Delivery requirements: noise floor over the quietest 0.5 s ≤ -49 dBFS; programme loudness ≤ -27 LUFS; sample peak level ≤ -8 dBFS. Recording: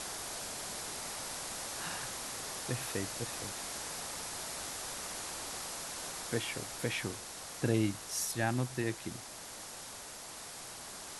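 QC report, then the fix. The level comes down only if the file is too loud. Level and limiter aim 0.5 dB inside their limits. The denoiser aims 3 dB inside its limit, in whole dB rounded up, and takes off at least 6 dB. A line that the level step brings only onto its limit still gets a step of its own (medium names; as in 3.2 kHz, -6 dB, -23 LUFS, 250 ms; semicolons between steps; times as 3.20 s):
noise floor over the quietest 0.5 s -47 dBFS: fail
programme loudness -37.5 LUFS: pass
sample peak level -17.0 dBFS: pass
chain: noise reduction 6 dB, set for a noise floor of -47 dBFS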